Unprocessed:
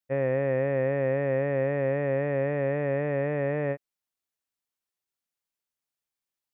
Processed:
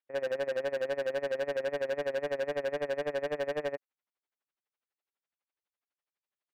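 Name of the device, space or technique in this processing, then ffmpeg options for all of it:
helicopter radio: -af "highpass=350,lowpass=2600,aeval=exprs='val(0)*pow(10,-24*(0.5-0.5*cos(2*PI*12*n/s))/20)':c=same,asoftclip=type=hard:threshold=0.02,volume=2"

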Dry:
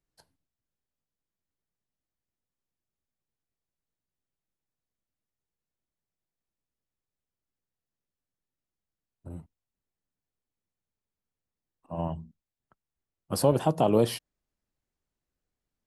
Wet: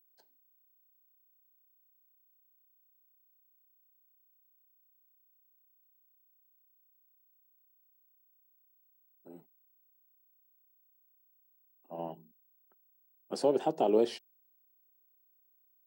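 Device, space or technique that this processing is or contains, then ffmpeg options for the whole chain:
old television with a line whistle: -af "highpass=f=220:w=0.5412,highpass=f=220:w=1.3066,equalizer=f=390:t=q:w=4:g=9,equalizer=f=790:t=q:w=4:g=4,equalizer=f=1100:t=q:w=4:g=-8,lowpass=f=7600:w=0.5412,lowpass=f=7600:w=1.3066,aeval=exprs='val(0)+0.001*sin(2*PI*15734*n/s)':c=same,volume=0.473"

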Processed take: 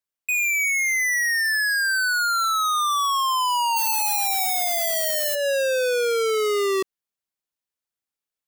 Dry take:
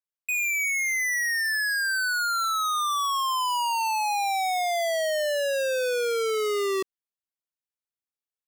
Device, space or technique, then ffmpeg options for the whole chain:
limiter into clipper: -filter_complex "[0:a]asplit=3[s0][s1][s2];[s0]afade=t=out:st=3.76:d=0.02[s3];[s1]aemphasis=mode=production:type=riaa,afade=t=in:st=3.76:d=0.02,afade=t=out:st=5.34:d=0.02[s4];[s2]afade=t=in:st=5.34:d=0.02[s5];[s3][s4][s5]amix=inputs=3:normalize=0,alimiter=limit=0.266:level=0:latency=1:release=141,asoftclip=type=hard:threshold=0.178,volume=1.58"

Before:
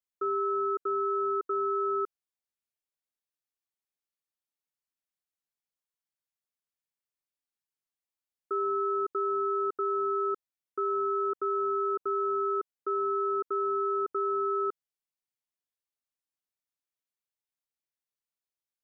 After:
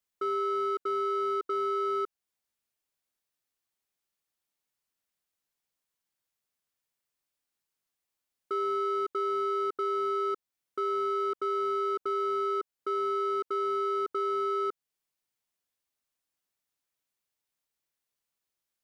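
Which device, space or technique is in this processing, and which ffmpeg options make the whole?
limiter into clipper: -af "alimiter=level_in=1.88:limit=0.0631:level=0:latency=1:release=281,volume=0.531,asoftclip=type=hard:threshold=0.0266,volume=2.11"

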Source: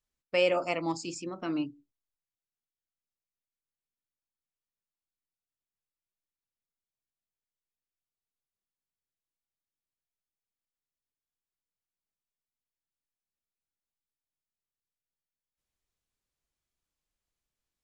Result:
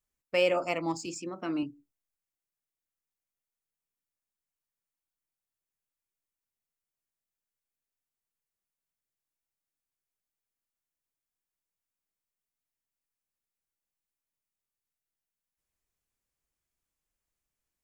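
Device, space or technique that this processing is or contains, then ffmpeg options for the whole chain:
exciter from parts: -filter_complex "[0:a]asplit=2[s0][s1];[s1]highpass=f=2100:w=0.5412,highpass=f=2100:w=1.3066,asoftclip=type=tanh:threshold=0.0119,highpass=3600,volume=0.501[s2];[s0][s2]amix=inputs=2:normalize=0,asettb=1/sr,asplit=3[s3][s4][s5];[s3]atrim=end=1.064[s6];[s4]atrim=start=1.06:end=1.63,asetpts=PTS-STARTPTS,afade=t=in:d=0.004:c=qsin,afade=t=out:st=0.566:d=0.004:c=qsin,highpass=140[s7];[s5]atrim=start=1.626[s8];[s6][s7]acrossfade=d=0.004:c1=hsin:c2=qsin[s9];[s9][s8]acrossfade=d=0.004:c1=qsin:c2=hsin"

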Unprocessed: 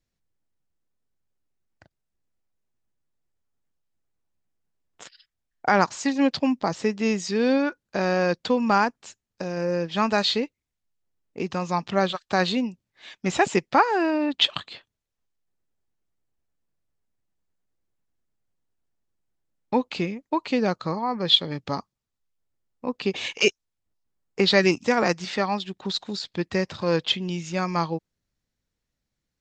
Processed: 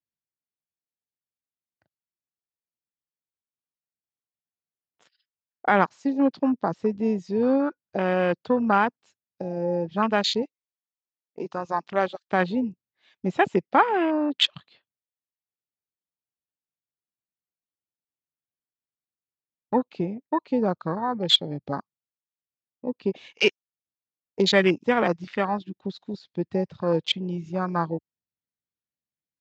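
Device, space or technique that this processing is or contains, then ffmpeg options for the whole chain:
over-cleaned archive recording: -filter_complex "[0:a]asettb=1/sr,asplit=3[s0][s1][s2];[s0]atrim=end=10.424[s3];[s1]atrim=start=10.42:end=12.28,asetpts=PTS-STARTPTS,afade=t=in:d=0.004:c=qsin,afade=t=out:st=1.856:d=0.004:c=qsin,bass=f=250:g=-11,treble=f=4000:g=8[s4];[s2]atrim=start=12.276[s5];[s3][s4]acrossfade=d=0.004:c1=hsin:c2=qsin[s6];[s6][s5]acrossfade=d=0.004:c1=qsin:c2=hsin,highpass=100,lowpass=5400,afwtdn=0.0447"

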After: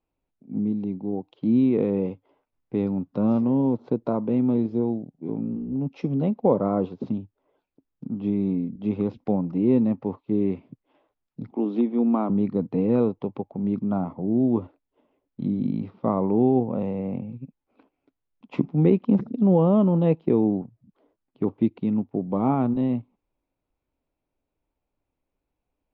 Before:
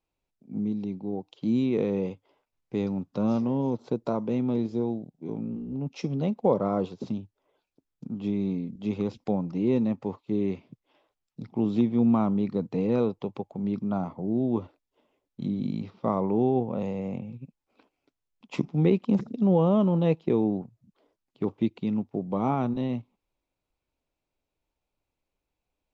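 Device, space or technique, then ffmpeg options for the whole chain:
phone in a pocket: -filter_complex "[0:a]lowpass=3500,equalizer=f=270:t=o:w=0.35:g=4,highshelf=f=2000:g=-8.5,asettb=1/sr,asplit=3[s0][s1][s2];[s0]atrim=end=11.514[s3];[s1]atrim=start=11.51:end=12.3,asetpts=PTS-STARTPTS,afade=t=in:d=0.004:c=qsin,afade=t=out:st=0.786:d=0.004:c=qsin,highpass=f=250:w=0.5412,highpass=f=250:w=1.3066[s4];[s2]atrim=start=12.296[s5];[s3][s4]acrossfade=d=0.004:c1=hsin:c2=qsin[s6];[s6][s5]acrossfade=d=0.004:c1=qsin:c2=hsin,volume=1.41"

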